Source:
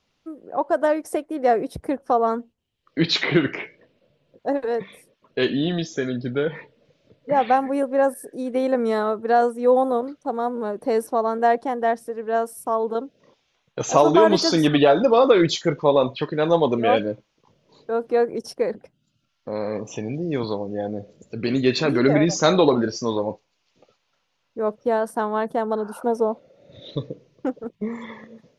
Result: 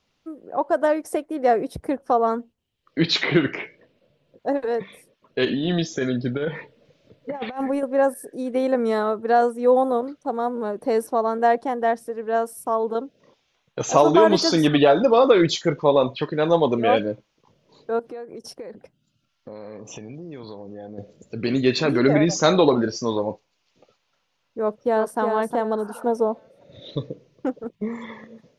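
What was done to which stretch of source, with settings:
5.45–7.83 s: compressor with a negative ratio -23 dBFS, ratio -0.5
17.99–20.98 s: compression 5:1, threshold -34 dBFS
24.60–25.19 s: echo throw 360 ms, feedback 30%, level -4.5 dB

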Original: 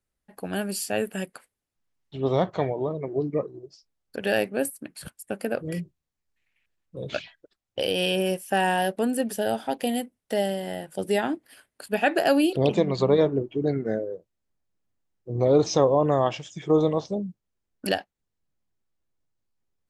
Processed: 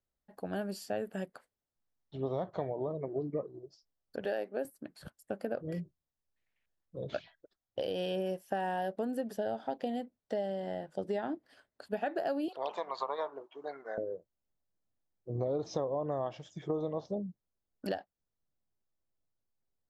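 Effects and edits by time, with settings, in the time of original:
4.25–4.65 s: Chebyshev high-pass 330 Hz
9.37–11.86 s: low-pass 6.9 kHz
12.48–13.98 s: resonant high-pass 1 kHz, resonance Q 3.3
whole clip: fifteen-band graphic EQ 630 Hz +4 dB, 2.5 kHz -8 dB, 10 kHz -11 dB; compression, threshold -24 dBFS; dynamic bell 8 kHz, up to -6 dB, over -57 dBFS, Q 0.73; trim -6.5 dB

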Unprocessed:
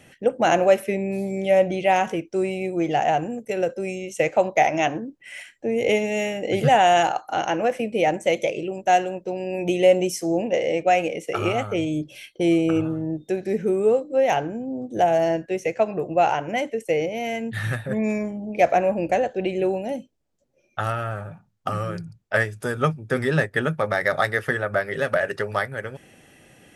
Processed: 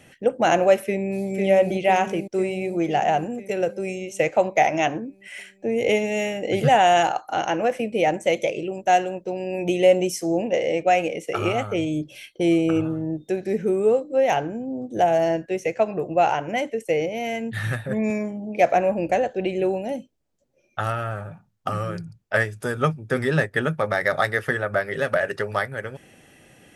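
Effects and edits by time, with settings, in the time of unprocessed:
0.84–1.27 s: echo throw 500 ms, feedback 65%, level -3.5 dB
18.10–18.73 s: high-pass 110 Hz

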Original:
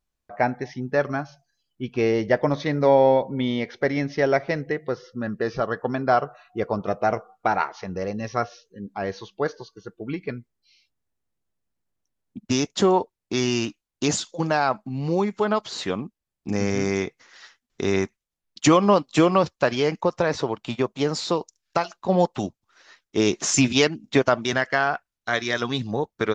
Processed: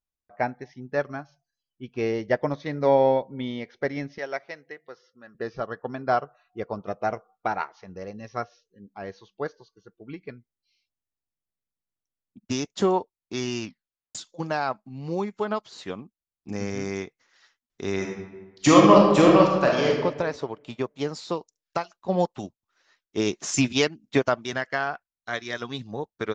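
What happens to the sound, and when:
4.18–5.35 s: high-pass 910 Hz 6 dB/octave
13.62 s: tape stop 0.53 s
17.95–19.89 s: reverb throw, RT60 1.5 s, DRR -2.5 dB
whole clip: upward expansion 1.5:1, over -35 dBFS

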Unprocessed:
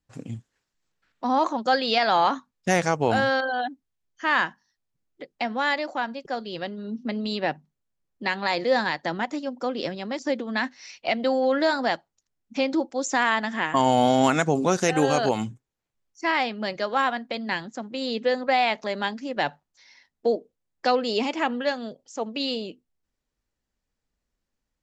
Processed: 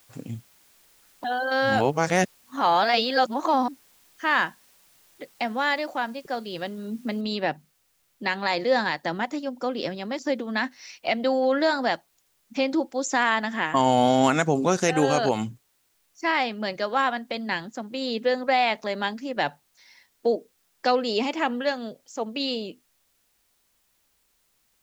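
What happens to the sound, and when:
1.24–3.68 s: reverse
7.21 s: noise floor step -59 dB -69 dB

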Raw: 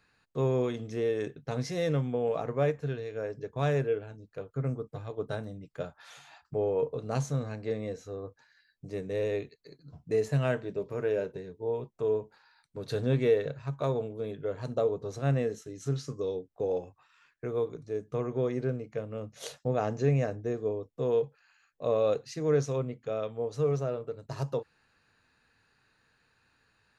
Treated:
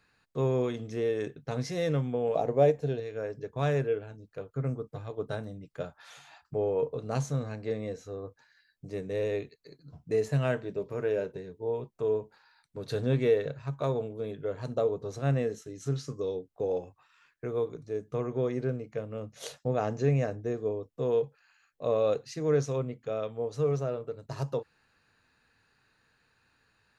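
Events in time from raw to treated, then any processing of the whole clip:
2.35–3.00 s: FFT filter 110 Hz 0 dB, 750 Hz +7 dB, 1.2 kHz -7 dB, 4.3 kHz +3 dB

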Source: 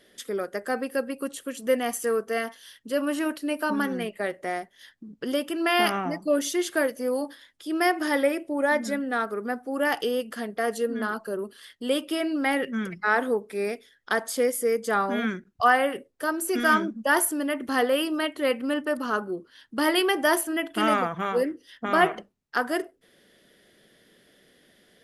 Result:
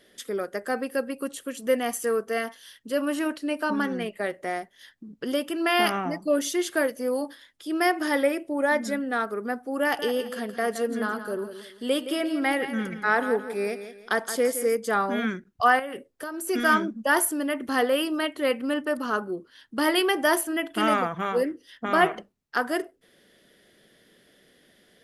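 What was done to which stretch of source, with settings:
3.27–4.06 s: low-pass 8.7 kHz
9.82–14.75 s: feedback delay 169 ms, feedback 33%, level -11 dB
15.79–16.47 s: compression, threshold -30 dBFS

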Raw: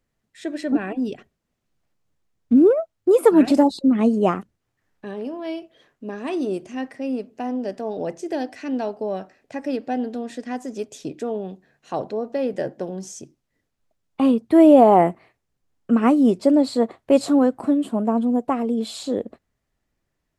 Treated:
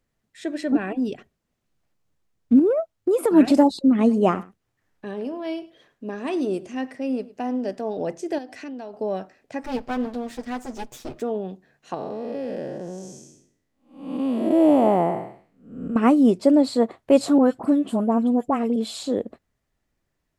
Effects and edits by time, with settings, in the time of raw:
2.59–3.31 s: compression, threshold -16 dBFS
3.88–7.73 s: delay 104 ms -19.5 dB
8.38–8.94 s: compression, threshold -32 dBFS
9.63–11.22 s: comb filter that takes the minimum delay 8.3 ms
11.94–15.96 s: spectral blur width 323 ms
17.38–18.76 s: phase dispersion highs, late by 51 ms, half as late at 1.6 kHz

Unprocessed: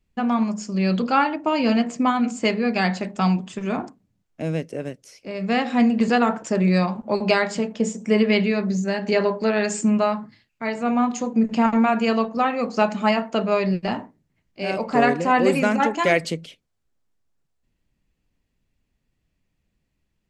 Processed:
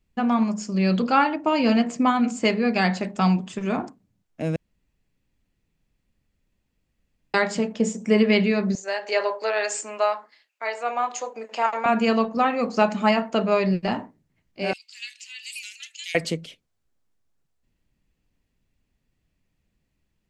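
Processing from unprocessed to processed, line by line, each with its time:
4.56–7.34 s: room tone
8.75–11.86 s: high-pass 490 Hz 24 dB/octave
14.73–16.15 s: steep high-pass 2.8 kHz

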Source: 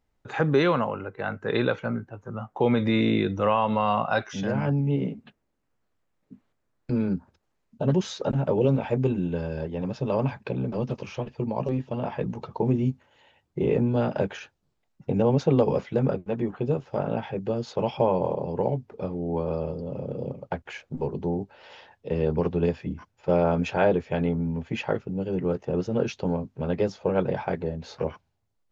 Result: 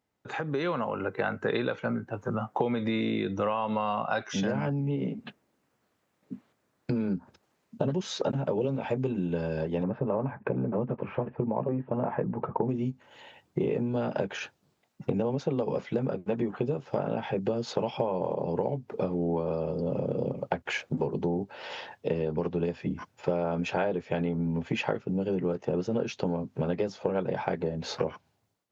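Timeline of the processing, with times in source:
9.83–12.69 s: low-pass 1.8 kHz 24 dB/octave
whole clip: compression 12:1, threshold -33 dBFS; high-pass 130 Hz 12 dB/octave; level rider gain up to 10 dB; trim -1.5 dB

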